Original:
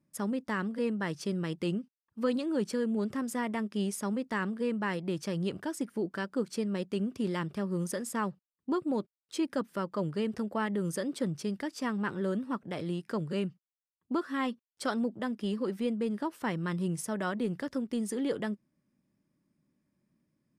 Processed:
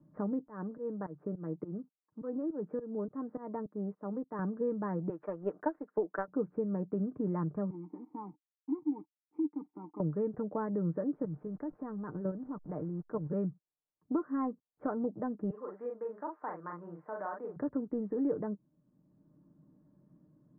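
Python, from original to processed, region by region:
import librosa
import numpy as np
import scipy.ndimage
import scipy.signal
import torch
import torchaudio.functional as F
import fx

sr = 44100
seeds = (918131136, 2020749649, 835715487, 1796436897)

y = fx.chain(x, sr, fx.highpass(hz=310.0, slope=6),
    fx.volume_shaper(bpm=104, per_beat=2, depth_db=-20, release_ms=229.0, shape='fast start'),
    fx.air_absorb(metres=460.0), at=(0.48, 4.39))
y = fx.chain(y, sr, fx.highpass(hz=470.0, slope=12),
    fx.high_shelf(hz=2100.0, db=9.5),
    fx.transient(attack_db=12, sustain_db=-5), at=(5.09, 6.28))
y = fx.chain(y, sr, fx.quant_companded(bits=4),
    fx.vowel_filter(vowel='u'), at=(7.7, 10.0))
y = fx.chain(y, sr, fx.delta_hold(step_db=-49.0),
    fx.level_steps(step_db=10), at=(11.15, 13.3))
y = fx.chain(y, sr, fx.highpass(hz=800.0, slope=12),
    fx.doubler(ms=41.0, db=-3.0), at=(15.5, 17.56))
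y = scipy.signal.sosfilt(scipy.signal.bessel(8, 800.0, 'lowpass', norm='mag', fs=sr, output='sos'), y)
y = y + 0.46 * np.pad(y, (int(6.6 * sr / 1000.0), 0))[:len(y)]
y = fx.band_squash(y, sr, depth_pct=40)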